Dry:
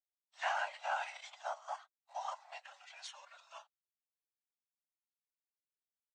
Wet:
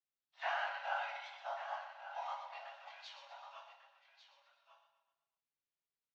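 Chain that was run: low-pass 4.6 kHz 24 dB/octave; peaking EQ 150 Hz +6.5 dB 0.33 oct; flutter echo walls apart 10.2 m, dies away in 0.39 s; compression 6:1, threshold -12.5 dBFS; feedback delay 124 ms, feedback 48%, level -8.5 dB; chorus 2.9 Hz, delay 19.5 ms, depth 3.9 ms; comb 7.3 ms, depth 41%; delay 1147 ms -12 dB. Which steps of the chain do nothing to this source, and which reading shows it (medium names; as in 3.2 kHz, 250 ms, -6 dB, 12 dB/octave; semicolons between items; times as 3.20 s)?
peaking EQ 150 Hz: input has nothing below 480 Hz; compression, threshold -12.5 dBFS: peak at its input -23.0 dBFS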